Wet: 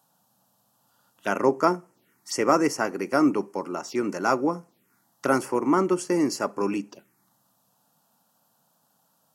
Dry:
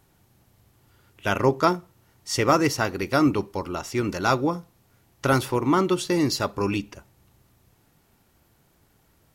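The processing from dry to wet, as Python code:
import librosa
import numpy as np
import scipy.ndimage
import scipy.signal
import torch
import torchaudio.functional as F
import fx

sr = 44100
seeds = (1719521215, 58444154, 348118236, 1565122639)

y = scipy.signal.sosfilt(scipy.signal.butter(4, 190.0, 'highpass', fs=sr, output='sos'), x)
y = fx.env_phaser(y, sr, low_hz=350.0, high_hz=3700.0, full_db=-27.0)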